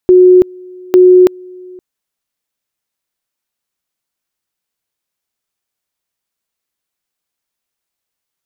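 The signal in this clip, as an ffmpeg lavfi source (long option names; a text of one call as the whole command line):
ffmpeg -f lavfi -i "aevalsrc='pow(10,(-1.5-27.5*gte(mod(t,0.85),0.33))/20)*sin(2*PI*365*t)':duration=1.7:sample_rate=44100" out.wav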